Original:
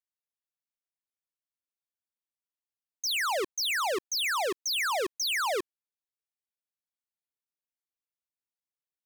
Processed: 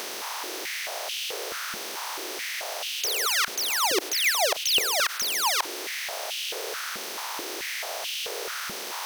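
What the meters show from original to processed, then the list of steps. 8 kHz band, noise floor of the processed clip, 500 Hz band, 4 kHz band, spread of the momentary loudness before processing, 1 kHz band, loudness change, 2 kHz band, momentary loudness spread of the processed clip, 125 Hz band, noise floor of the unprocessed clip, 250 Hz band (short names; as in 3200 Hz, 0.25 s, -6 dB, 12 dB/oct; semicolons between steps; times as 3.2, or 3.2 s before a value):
+9.0 dB, -35 dBFS, +2.5 dB, +7.5 dB, 4 LU, +3.5 dB, +2.0 dB, +5.0 dB, 10 LU, n/a, under -85 dBFS, +3.5 dB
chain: per-bin compression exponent 0.2; high shelf 6500 Hz +10 dB; soft clip -6.5 dBFS, distortion -23 dB; dynamic EQ 1100 Hz, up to -4 dB, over -36 dBFS, Q 0.91; stepped high-pass 4.6 Hz 210–2900 Hz; gain -4 dB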